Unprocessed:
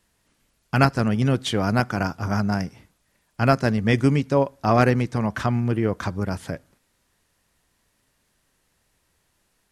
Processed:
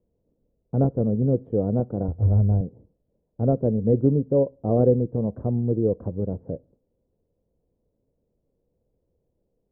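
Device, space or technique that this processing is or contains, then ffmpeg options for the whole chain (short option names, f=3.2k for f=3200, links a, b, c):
under water: -filter_complex "[0:a]asettb=1/sr,asplit=3[a][b][c];[a]atrim=end=2.084[d];[b]atrim=start=2.08:end=2.61,asetpts=PTS-STARTPTS,afade=t=in:d=0.004:c=qsin,afade=t=out:st=0.526:d=0.004:c=qsin,lowshelf=f=120:t=q:w=1.5:g=12.5[e];[c]atrim=start=2.606[f];[d][e]acrossfade=d=0.004:c1=hsin:c2=qsin[g];[g][f]acrossfade=d=0.004:c1=qsin:c2=hsin,lowpass=f=560:w=0.5412,lowpass=f=560:w=1.3066,equalizer=f=490:t=o:w=0.37:g=9,volume=-1.5dB"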